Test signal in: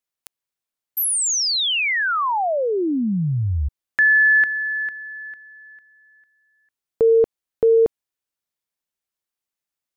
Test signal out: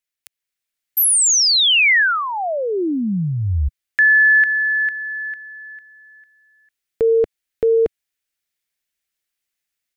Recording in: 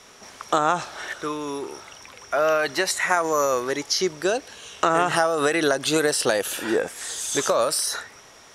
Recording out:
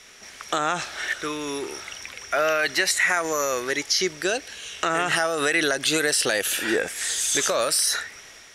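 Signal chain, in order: graphic EQ 125/250/500/1000/2000 Hz -6/-4/-4/-9/+5 dB; in parallel at +3 dB: peak limiter -16.5 dBFS; on the sum: level rider gain up to 5.5 dB; trim -6.5 dB

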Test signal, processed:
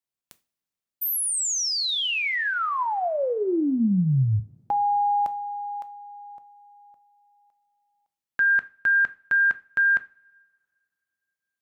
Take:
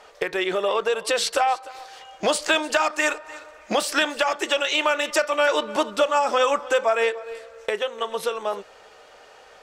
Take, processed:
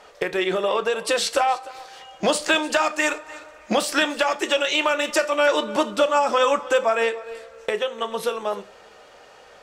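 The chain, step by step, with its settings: peaking EQ 160 Hz +6 dB 1.7 oct; two-slope reverb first 0.32 s, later 2.4 s, from -27 dB, DRR 11 dB

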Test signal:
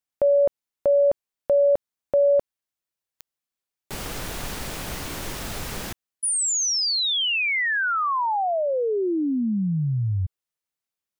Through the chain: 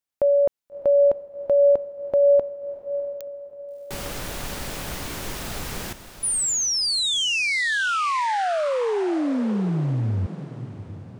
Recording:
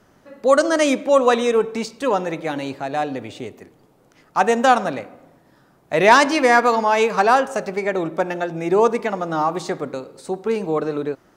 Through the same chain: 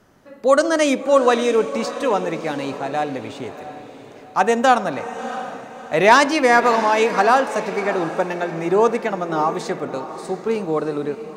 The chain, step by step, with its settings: echo that smears into a reverb 654 ms, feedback 41%, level -12 dB

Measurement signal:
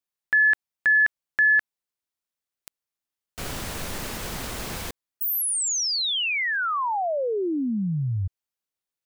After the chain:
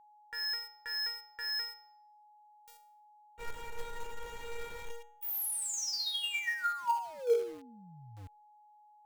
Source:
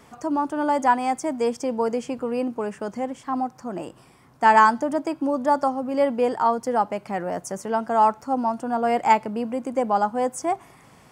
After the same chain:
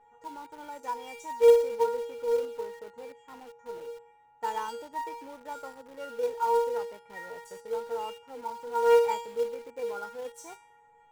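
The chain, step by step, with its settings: local Wiener filter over 9 samples; feedback comb 470 Hz, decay 0.53 s, mix 100%; in parallel at -9 dB: companded quantiser 4-bit; on the sum: whistle 840 Hz -67 dBFS; trim +8.5 dB

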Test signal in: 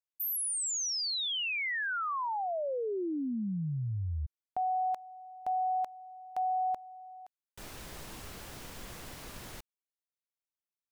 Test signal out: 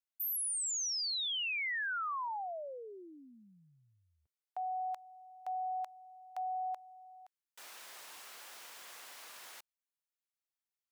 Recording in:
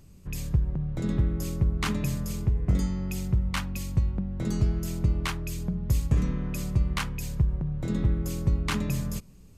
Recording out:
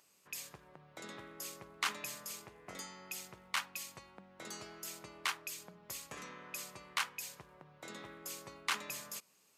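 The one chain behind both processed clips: high-pass 830 Hz 12 dB/octave; trim -2.5 dB

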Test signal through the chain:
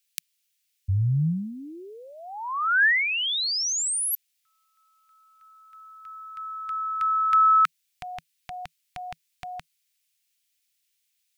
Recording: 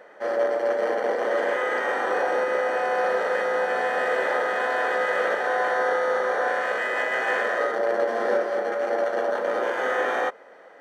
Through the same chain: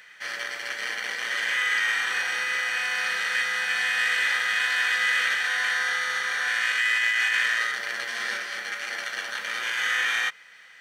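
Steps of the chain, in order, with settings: FFT filter 160 Hz 0 dB, 240 Hz -15 dB, 590 Hz -23 dB, 2.4 kHz +14 dB; compressor with a negative ratio -21 dBFS, ratio -1; trim -1.5 dB

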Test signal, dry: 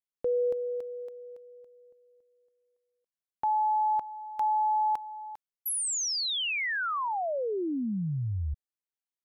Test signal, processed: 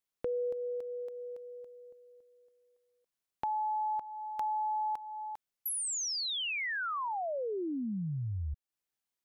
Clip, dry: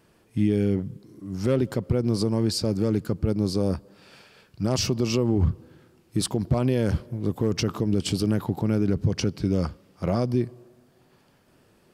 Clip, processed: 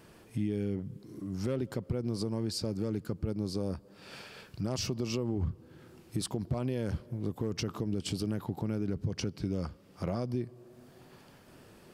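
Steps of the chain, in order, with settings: compression 2:1, threshold -46 dBFS; trim +4.5 dB

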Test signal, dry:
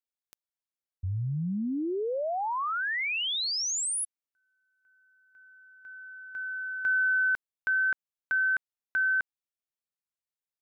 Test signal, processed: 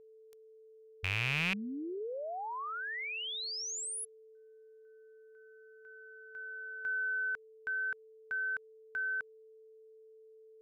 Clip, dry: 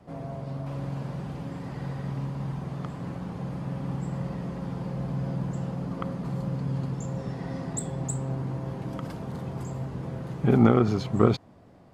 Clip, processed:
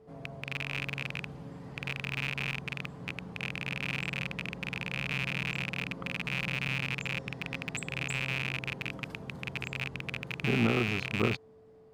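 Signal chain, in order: rattle on loud lows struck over -30 dBFS, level -11 dBFS; whistle 440 Hz -46 dBFS; trim -9 dB

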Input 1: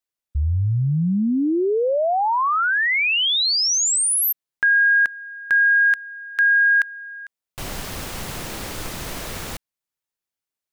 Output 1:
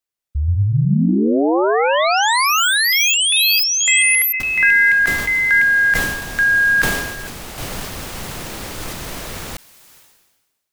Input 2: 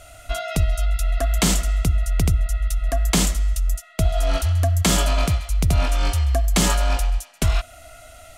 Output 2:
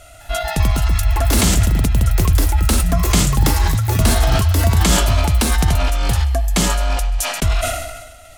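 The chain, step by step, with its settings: ever faster or slower copies 204 ms, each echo +4 st, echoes 3; decay stretcher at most 45 dB/s; trim +1.5 dB

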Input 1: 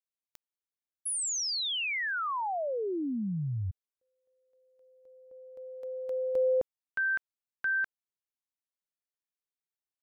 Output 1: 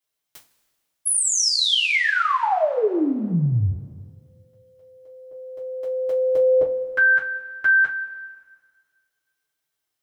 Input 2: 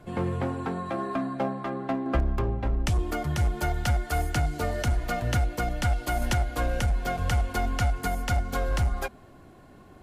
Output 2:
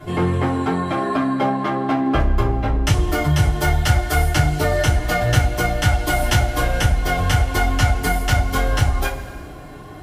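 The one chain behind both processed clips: two-slope reverb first 0.23 s, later 1.8 s, from -21 dB, DRR -8 dB; in parallel at +1 dB: compression, threshold -26 dBFS; on the sum: trim -1 dB

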